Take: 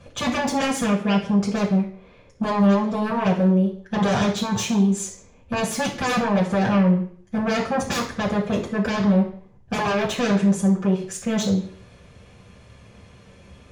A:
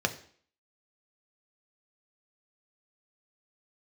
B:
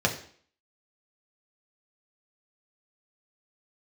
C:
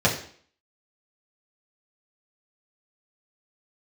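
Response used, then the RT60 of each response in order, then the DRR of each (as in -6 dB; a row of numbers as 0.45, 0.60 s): C; 0.50, 0.50, 0.50 s; 5.5, 0.0, -5.5 dB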